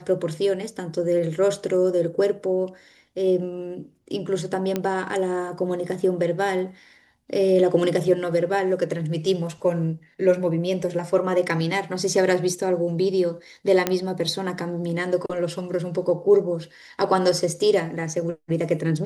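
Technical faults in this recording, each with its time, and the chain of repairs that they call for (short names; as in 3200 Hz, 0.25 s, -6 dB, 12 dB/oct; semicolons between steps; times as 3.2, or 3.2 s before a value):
4.76 pop -11 dBFS
13.87 pop -6 dBFS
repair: de-click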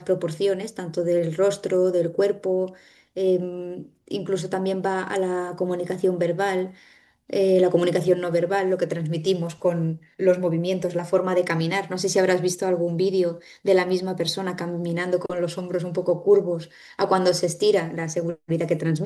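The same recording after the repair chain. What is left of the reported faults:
none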